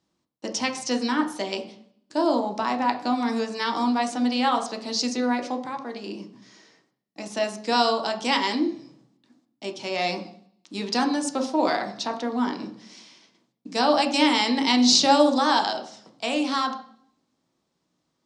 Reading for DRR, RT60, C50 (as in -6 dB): 3.0 dB, 0.60 s, 11.0 dB